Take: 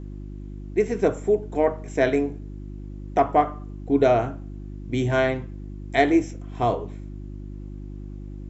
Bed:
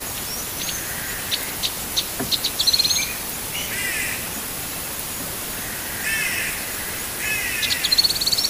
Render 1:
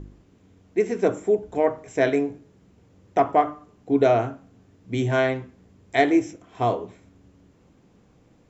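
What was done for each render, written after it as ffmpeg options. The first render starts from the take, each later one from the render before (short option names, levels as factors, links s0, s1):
-af "bandreject=f=50:t=h:w=4,bandreject=f=100:t=h:w=4,bandreject=f=150:t=h:w=4,bandreject=f=200:t=h:w=4,bandreject=f=250:t=h:w=4,bandreject=f=300:t=h:w=4,bandreject=f=350:t=h:w=4"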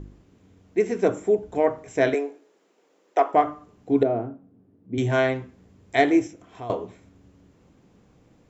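-filter_complex "[0:a]asettb=1/sr,asplit=3[s0][s1][s2];[s0]atrim=end=2.144[s3];[s1]atrim=start=2.14:end=3.34,asetpts=PTS-STARTPTS,afade=t=in:d=0.004:c=qsin,afade=t=out:st=1.196:d=0.004:c=qsin,highpass=f=360:w=0.5412,highpass=f=360:w=1.3066[s4];[s2]atrim=start=3.336[s5];[s3][s4]acrossfade=d=0.004:c1=hsin:c2=qsin[s6];[s6][s5]acrossfade=d=0.004:c1=qsin:c2=hsin,asettb=1/sr,asplit=3[s7][s8][s9];[s7]atrim=end=4.034[s10];[s8]atrim=start=4.03:end=4.98,asetpts=PTS-STARTPTS,afade=t=in:d=0.004:c=qsin,afade=t=out:st=0.946:d=0.004:c=qsin,bandpass=f=260:t=q:w=0.94[s11];[s9]atrim=start=4.976[s12];[s10][s11]acrossfade=d=0.004:c1=hsin:c2=qsin[s13];[s13][s12]acrossfade=d=0.004:c1=qsin:c2=hsin,asettb=1/sr,asplit=3[s14][s15][s16];[s14]atrim=end=6.274[s17];[s15]atrim=start=6.27:end=6.7,asetpts=PTS-STARTPTS,afade=t=in:d=0.004:c=qsin,afade=t=out:st=0.426:d=0.004:c=qsin,acompressor=threshold=0.00708:ratio=2:attack=3.2:release=140:knee=1:detection=peak[s18];[s16]atrim=start=6.696[s19];[s17][s18]acrossfade=d=0.004:c1=hsin:c2=qsin[s20];[s20][s19]acrossfade=d=0.004:c1=qsin:c2=hsin"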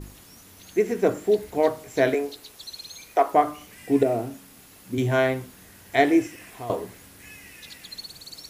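-filter_complex "[1:a]volume=0.0794[s0];[0:a][s0]amix=inputs=2:normalize=0"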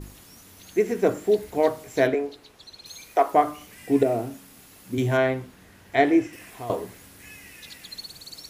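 -filter_complex "[0:a]asettb=1/sr,asplit=3[s0][s1][s2];[s0]atrim=end=2.074[s3];[s1]atrim=start=2.07:end=2.86,asetpts=PTS-STARTPTS,afade=t=in:d=0.004:c=qsin,afade=t=out:st=0.786:d=0.004:c=qsin,aemphasis=mode=reproduction:type=75kf[s4];[s2]atrim=start=2.856[s5];[s3][s4]acrossfade=d=0.004:c1=hsin:c2=qsin[s6];[s6][s5]acrossfade=d=0.004:c1=qsin:c2=hsin,asettb=1/sr,asplit=3[s7][s8][s9];[s7]atrim=end=5.174[s10];[s8]atrim=start=5.17:end=6.33,asetpts=PTS-STARTPTS,afade=t=in:d=0.004:c=qsin,afade=t=out:st=1.156:d=0.004:c=qsin,highshelf=f=5700:g=-12[s11];[s9]atrim=start=6.326[s12];[s10][s11]acrossfade=d=0.004:c1=hsin:c2=qsin[s13];[s13][s12]acrossfade=d=0.004:c1=qsin:c2=hsin"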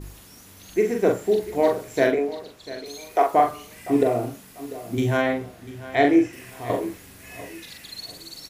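-filter_complex "[0:a]asplit=2[s0][s1];[s1]adelay=42,volume=0.631[s2];[s0][s2]amix=inputs=2:normalize=0,aecho=1:1:694|1388|2082:0.158|0.0507|0.0162"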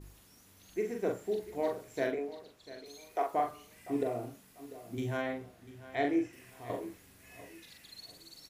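-af "volume=0.224"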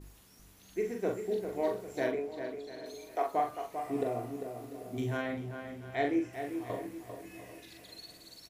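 -filter_complex "[0:a]asplit=2[s0][s1];[s1]adelay=16,volume=0.251[s2];[s0][s2]amix=inputs=2:normalize=0,asplit=2[s3][s4];[s4]adelay=396,lowpass=f=2500:p=1,volume=0.422,asplit=2[s5][s6];[s6]adelay=396,lowpass=f=2500:p=1,volume=0.43,asplit=2[s7][s8];[s8]adelay=396,lowpass=f=2500:p=1,volume=0.43,asplit=2[s9][s10];[s10]adelay=396,lowpass=f=2500:p=1,volume=0.43,asplit=2[s11][s12];[s12]adelay=396,lowpass=f=2500:p=1,volume=0.43[s13];[s3][s5][s7][s9][s11][s13]amix=inputs=6:normalize=0"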